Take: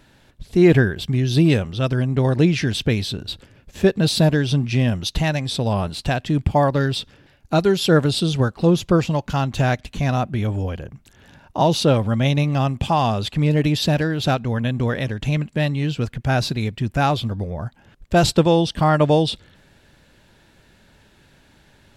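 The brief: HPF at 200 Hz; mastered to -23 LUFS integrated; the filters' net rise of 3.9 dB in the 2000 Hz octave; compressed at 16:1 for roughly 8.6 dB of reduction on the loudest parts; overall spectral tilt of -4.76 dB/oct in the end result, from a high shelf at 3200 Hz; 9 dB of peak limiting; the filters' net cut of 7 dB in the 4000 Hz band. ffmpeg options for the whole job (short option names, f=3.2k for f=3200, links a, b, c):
-af "highpass=200,equalizer=f=2k:t=o:g=9,highshelf=f=3.2k:g=-7,equalizer=f=4k:t=o:g=-6.5,acompressor=threshold=-18dB:ratio=16,volume=5.5dB,alimiter=limit=-11dB:level=0:latency=1"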